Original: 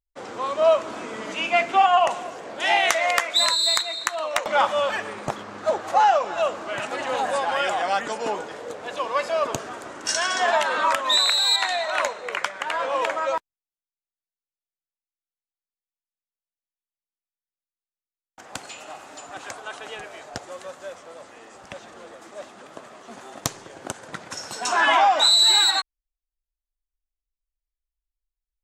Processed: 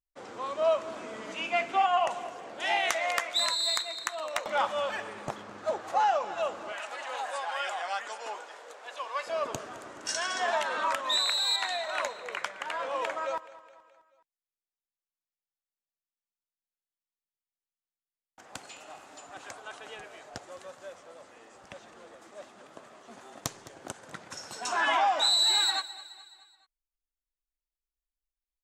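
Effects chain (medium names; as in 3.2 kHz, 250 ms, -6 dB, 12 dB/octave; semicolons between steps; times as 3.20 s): 6.72–9.27 s: high-pass 700 Hz 12 dB/octave; feedback delay 212 ms, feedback 53%, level -18 dB; trim -8 dB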